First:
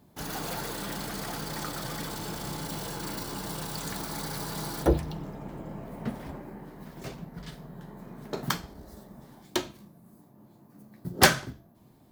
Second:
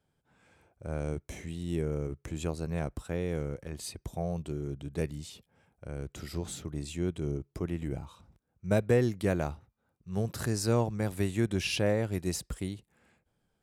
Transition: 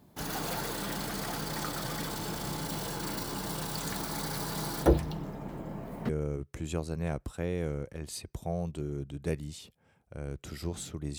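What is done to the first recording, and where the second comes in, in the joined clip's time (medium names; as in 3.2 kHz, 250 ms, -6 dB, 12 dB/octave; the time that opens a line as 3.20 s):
first
6.09 s: go over to second from 1.80 s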